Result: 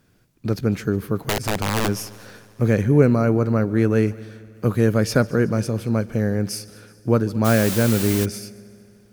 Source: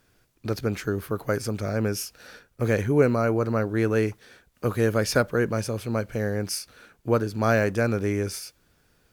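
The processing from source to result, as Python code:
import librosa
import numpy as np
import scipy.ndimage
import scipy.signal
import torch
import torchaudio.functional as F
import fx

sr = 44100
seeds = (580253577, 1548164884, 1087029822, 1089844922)

y = fx.peak_eq(x, sr, hz=170.0, db=9.5, octaves=1.8)
y = fx.overflow_wrap(y, sr, gain_db=15.0, at=(1.17, 1.87), fade=0.02)
y = fx.echo_heads(y, sr, ms=74, heads='second and third', feedback_pct=59, wet_db=-22.5)
y = fx.dmg_noise_colour(y, sr, seeds[0], colour='white', level_db=-29.0, at=(7.44, 8.24), fade=0.02)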